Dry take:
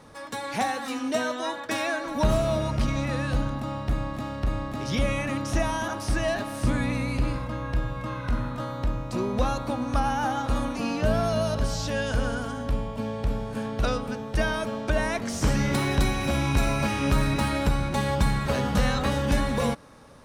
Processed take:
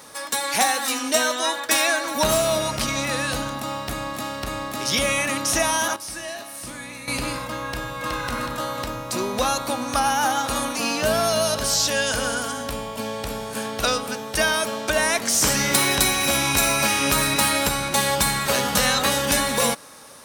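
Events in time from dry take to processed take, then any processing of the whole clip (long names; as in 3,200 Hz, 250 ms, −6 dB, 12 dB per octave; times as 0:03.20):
0:05.96–0:07.08: tuned comb filter 170 Hz, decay 0.76 s, mix 80%
0:07.64–0:08.09: delay throw 370 ms, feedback 55%, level −2.5 dB
whole clip: RIAA equalisation recording; level +6 dB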